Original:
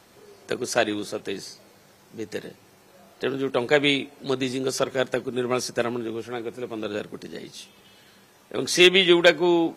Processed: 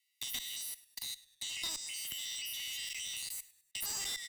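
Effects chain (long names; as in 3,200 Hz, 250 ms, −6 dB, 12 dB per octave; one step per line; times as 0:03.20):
peak hold with a decay on every bin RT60 1.32 s
Chebyshev high-pass filter 850 Hz, order 10
comb filter 2.4 ms, depth 89%
output level in coarse steps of 21 dB
brickwall limiter −23.5 dBFS, peak gain reduction 14.5 dB
asymmetric clip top −37 dBFS
change of speed 2.28×
noise gate −49 dBFS, range −37 dB
on a send: echo with shifted repeats 102 ms, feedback 36%, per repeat −76 Hz, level −22 dB
on the sum: multiband upward and downward compressor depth 70%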